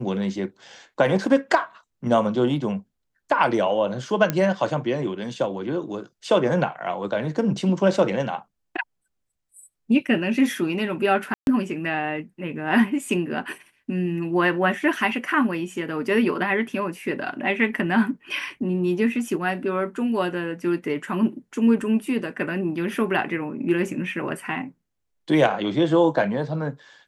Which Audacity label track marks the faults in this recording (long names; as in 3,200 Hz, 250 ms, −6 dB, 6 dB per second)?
4.300000	4.300000	click −8 dBFS
11.340000	11.470000	drop-out 131 ms